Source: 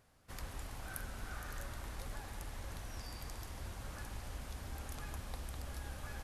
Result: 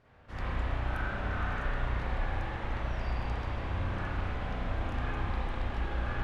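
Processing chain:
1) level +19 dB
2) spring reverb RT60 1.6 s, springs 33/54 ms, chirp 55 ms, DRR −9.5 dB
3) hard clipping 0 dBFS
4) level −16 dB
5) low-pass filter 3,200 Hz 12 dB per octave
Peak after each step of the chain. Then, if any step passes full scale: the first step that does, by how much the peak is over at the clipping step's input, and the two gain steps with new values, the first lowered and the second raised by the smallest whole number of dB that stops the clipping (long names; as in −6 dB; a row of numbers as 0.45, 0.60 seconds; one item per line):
−4.5, −3.0, −3.0, −19.0, −19.5 dBFS
no step passes full scale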